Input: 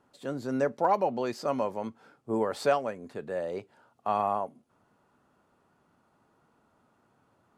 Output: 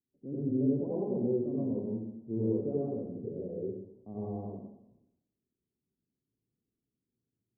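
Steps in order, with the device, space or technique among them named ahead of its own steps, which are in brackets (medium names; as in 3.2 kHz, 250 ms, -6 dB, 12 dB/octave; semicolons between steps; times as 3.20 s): gate with hold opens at -56 dBFS; next room (low-pass 340 Hz 24 dB/octave; reverberation RT60 0.85 s, pre-delay 75 ms, DRR -7 dB); trim -2 dB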